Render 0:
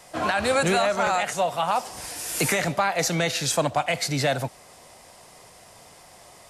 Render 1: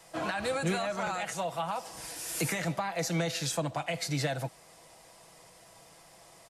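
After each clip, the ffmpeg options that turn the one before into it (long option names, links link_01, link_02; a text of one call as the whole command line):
ffmpeg -i in.wav -filter_complex "[0:a]aecho=1:1:6.1:0.47,acrossover=split=340[link_01][link_02];[link_02]acompressor=threshold=-23dB:ratio=6[link_03];[link_01][link_03]amix=inputs=2:normalize=0,volume=-7dB" out.wav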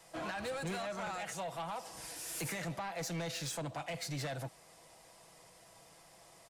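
ffmpeg -i in.wav -af "asoftclip=type=tanh:threshold=-30.5dB,volume=-4dB" out.wav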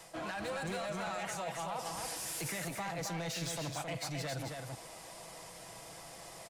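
ffmpeg -i in.wav -af "areverse,acompressor=threshold=-47dB:ratio=6,areverse,aecho=1:1:267:0.596,volume=8.5dB" out.wav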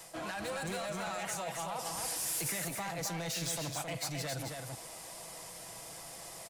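ffmpeg -i in.wav -af "crystalizer=i=1:c=0" out.wav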